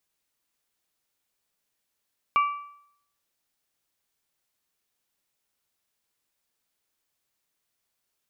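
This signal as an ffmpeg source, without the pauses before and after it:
-f lavfi -i "aevalsrc='0.158*pow(10,-3*t/0.68)*sin(2*PI*1160*t)+0.0531*pow(10,-3*t/0.552)*sin(2*PI*2320*t)+0.0178*pow(10,-3*t/0.523)*sin(2*PI*2784*t)':d=1.55:s=44100"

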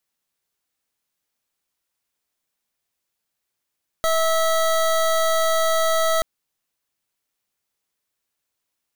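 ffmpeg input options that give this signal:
-f lavfi -i "aevalsrc='0.112*(2*lt(mod(650*t,1),0.25)-1)':d=2.18:s=44100"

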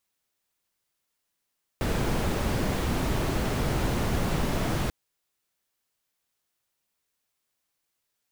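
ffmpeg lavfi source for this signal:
-f lavfi -i "anoisesrc=c=brown:a=0.234:d=3.09:r=44100:seed=1"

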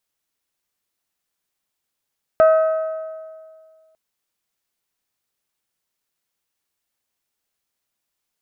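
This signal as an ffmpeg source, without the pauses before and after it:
-f lavfi -i "aevalsrc='0.398*pow(10,-3*t/1.95)*sin(2*PI*638*t)+0.126*pow(10,-3*t/1.584)*sin(2*PI*1276*t)+0.0398*pow(10,-3*t/1.5)*sin(2*PI*1531.2*t)+0.0126*pow(10,-3*t/1.402)*sin(2*PI*1914*t)+0.00398*pow(10,-3*t/1.287)*sin(2*PI*2552*t)':d=1.55:s=44100"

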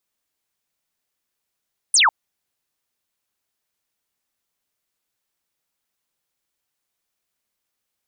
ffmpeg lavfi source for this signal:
-f lavfi -i "aevalsrc='0.266*clip(t/0.002,0,1)*clip((0.15-t)/0.002,0,1)*sin(2*PI*10000*0.15/log(800/10000)*(exp(log(800/10000)*t/0.15)-1))':d=0.15:s=44100"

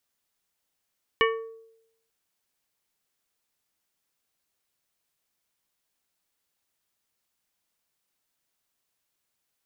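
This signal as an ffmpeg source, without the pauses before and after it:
-f lavfi -i "aevalsrc='0.106*pow(10,-3*t/0.82)*sin(2*PI*451*t)+0.0944*pow(10,-3*t/0.432)*sin(2*PI*1127.5*t)+0.0841*pow(10,-3*t/0.311)*sin(2*PI*1804*t)+0.075*pow(10,-3*t/0.266)*sin(2*PI*2255*t)+0.0668*pow(10,-3*t/0.221)*sin(2*PI*2931.5*t)':d=0.89:s=44100"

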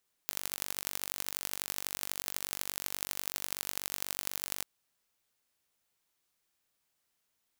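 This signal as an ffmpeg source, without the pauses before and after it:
-f lavfi -i "aevalsrc='0.531*eq(mod(n,915),0)*(0.5+0.5*eq(mod(n,3660),0))':d=4.35:s=44100"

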